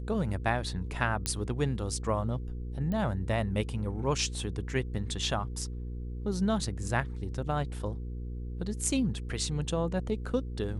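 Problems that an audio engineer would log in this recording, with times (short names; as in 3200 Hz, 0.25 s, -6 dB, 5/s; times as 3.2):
hum 60 Hz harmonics 8 -37 dBFS
1.26 pop -14 dBFS
2.92 pop -23 dBFS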